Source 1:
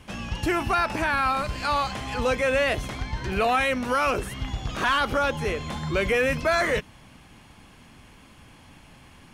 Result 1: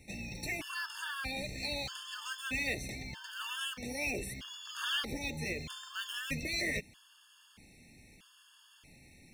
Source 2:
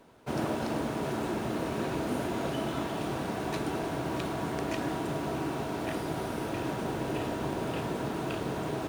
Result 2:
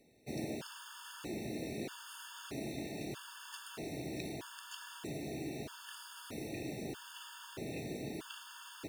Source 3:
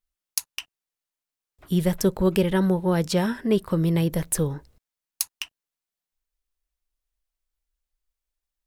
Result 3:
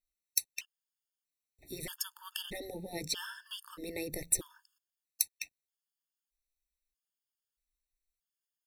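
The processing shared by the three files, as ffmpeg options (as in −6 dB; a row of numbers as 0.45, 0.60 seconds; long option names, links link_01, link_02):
-filter_complex "[0:a]afftfilt=real='re*lt(hypot(re,im),0.398)':imag='im*lt(hypot(re,im),0.398)':win_size=1024:overlap=0.75,lowshelf=frequency=300:gain=-9.5,acrossover=split=1600[link_01][link_02];[link_02]acrusher=bits=5:mode=log:mix=0:aa=0.000001[link_03];[link_01][link_03]amix=inputs=2:normalize=0,equalizer=frequency=920:width_type=o:width=1.6:gain=-14.5,afftfilt=real='re*gt(sin(2*PI*0.79*pts/sr)*(1-2*mod(floor(b*sr/1024/900),2)),0)':imag='im*gt(sin(2*PI*0.79*pts/sr)*(1-2*mod(floor(b*sr/1024/900),2)),0)':win_size=1024:overlap=0.75"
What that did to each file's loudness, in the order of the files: −12.0, −11.0, −12.5 LU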